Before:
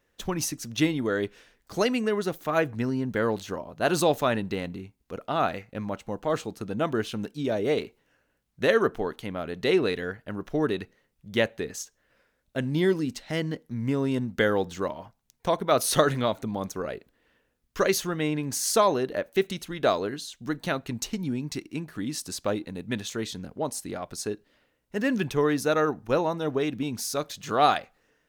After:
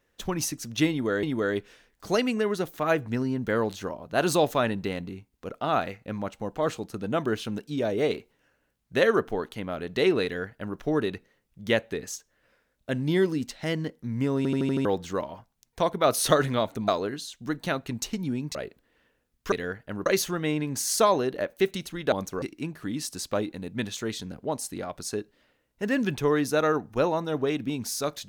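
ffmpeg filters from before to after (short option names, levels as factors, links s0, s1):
-filter_complex "[0:a]asplit=14[s0][s1][s2][s3][s4][s5][s6][s7][s8][s9][s10][s11][s12][s13];[s0]atrim=end=1.232[s14];[s1]atrim=start=0.898:end=14.122[s15];[s2]atrim=start=14.038:end=14.122[s16];[s3]atrim=start=14.038:end=14.122[s17];[s4]atrim=start=14.038:end=14.122[s18];[s5]atrim=start=14.038:end=14.122[s19];[s6]atrim=start=14.038:end=14.122[s20];[s7]atrim=start=14.518:end=16.552[s21];[s8]atrim=start=19.878:end=21.552[s22];[s9]atrim=start=16.848:end=17.822[s23];[s10]atrim=start=9.908:end=10.452[s24];[s11]atrim=start=17.818:end=19.882[s25];[s12]atrim=start=16.548:end=16.852[s26];[s13]atrim=start=21.548[s27];[s14][s15]acrossfade=d=0.004:c1=hsin:c2=hsin[s28];[s28][s16]acrossfade=d=0.004:c1=hsin:c2=hsin[s29];[s29][s17]acrossfade=d=0.004:c1=hsin:c2=hsin[s30];[s30][s18]acrossfade=d=0.004:c1=hsin:c2=hsin[s31];[s31][s19]acrossfade=d=0.004:c1=hsin:c2=hsin[s32];[s32][s20]acrossfade=d=0.004:c1=hsin:c2=hsin[s33];[s33][s21]acrossfade=d=0.004:c1=hsin:c2=hsin[s34];[s34][s22]acrossfade=d=0.004:c1=hsin:c2=hsin[s35];[s35][s23]acrossfade=d=0.004:c1=hsin:c2=hsin[s36];[s36][s24]acrossfade=d=0.004:c1=hsin:c2=hsin[s37];[s37][s25]acrossfade=d=0.004:c1=hsin:c2=hsin[s38];[s38][s26]acrossfade=d=0.004:c1=hsin:c2=hsin[s39];[s39][s27]acrossfade=d=0.004:c1=hsin:c2=hsin"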